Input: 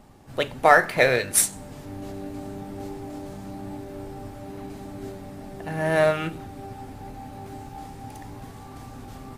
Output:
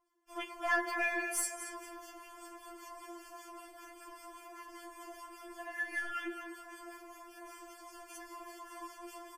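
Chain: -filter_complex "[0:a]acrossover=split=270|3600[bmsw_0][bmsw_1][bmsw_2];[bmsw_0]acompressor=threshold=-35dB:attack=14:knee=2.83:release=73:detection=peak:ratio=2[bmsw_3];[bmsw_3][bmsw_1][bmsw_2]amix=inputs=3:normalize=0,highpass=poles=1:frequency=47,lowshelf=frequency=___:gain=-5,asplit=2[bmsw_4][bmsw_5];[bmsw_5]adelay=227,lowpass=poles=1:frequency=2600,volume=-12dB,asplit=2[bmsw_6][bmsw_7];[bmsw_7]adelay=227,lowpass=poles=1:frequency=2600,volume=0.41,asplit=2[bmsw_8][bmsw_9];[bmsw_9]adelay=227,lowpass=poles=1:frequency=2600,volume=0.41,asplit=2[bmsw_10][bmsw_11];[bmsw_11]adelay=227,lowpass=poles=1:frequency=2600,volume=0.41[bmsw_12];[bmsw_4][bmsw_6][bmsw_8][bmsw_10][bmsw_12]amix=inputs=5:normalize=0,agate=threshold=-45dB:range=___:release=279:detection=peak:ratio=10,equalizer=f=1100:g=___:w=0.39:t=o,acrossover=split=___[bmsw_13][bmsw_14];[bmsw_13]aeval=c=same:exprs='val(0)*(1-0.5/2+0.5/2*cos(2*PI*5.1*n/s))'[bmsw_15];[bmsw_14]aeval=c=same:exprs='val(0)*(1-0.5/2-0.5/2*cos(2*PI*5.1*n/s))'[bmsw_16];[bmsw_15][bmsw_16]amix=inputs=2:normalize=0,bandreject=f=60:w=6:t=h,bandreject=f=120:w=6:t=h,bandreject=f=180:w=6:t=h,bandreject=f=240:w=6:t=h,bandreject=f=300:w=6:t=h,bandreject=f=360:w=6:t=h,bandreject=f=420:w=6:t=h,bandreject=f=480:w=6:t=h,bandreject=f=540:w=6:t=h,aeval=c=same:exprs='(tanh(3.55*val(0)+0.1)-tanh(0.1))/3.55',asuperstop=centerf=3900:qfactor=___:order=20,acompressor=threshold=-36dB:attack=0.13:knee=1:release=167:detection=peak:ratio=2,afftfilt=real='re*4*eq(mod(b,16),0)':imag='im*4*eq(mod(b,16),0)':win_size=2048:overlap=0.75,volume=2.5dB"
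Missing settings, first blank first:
63, -22dB, 10.5, 1500, 6.1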